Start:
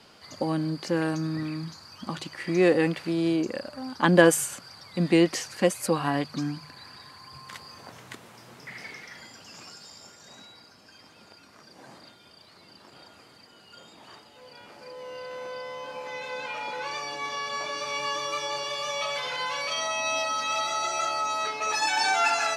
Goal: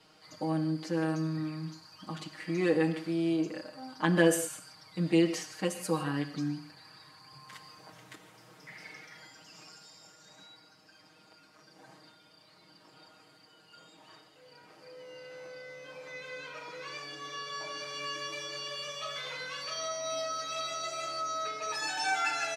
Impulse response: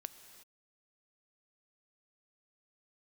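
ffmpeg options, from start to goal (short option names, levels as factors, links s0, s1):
-filter_complex "[0:a]aecho=1:1:6.4:0.98[s0];[1:a]atrim=start_sample=2205,afade=t=out:st=0.38:d=0.01,atrim=end_sample=17199,asetrate=83790,aresample=44100[s1];[s0][s1]afir=irnorm=-1:irlink=0"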